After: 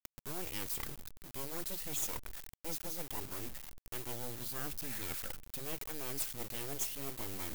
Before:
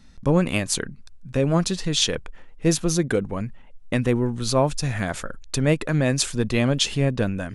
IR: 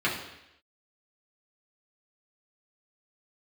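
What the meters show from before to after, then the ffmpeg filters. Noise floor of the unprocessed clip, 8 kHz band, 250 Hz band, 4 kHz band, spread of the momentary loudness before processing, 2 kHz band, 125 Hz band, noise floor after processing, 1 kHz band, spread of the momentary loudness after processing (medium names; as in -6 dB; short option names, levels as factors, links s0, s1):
-45 dBFS, -13.0 dB, -25.5 dB, -19.5 dB, 9 LU, -18.0 dB, -26.5 dB, under -85 dBFS, -17.0 dB, 8 LU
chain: -af "lowpass=3000,areverse,acompressor=threshold=0.0178:ratio=5,areverse,aeval=exprs='abs(val(0))':c=same,acrusher=bits=5:dc=4:mix=0:aa=0.000001,acompressor=mode=upward:threshold=0.00708:ratio=2.5,aemphasis=mode=production:type=75fm,volume=0.562"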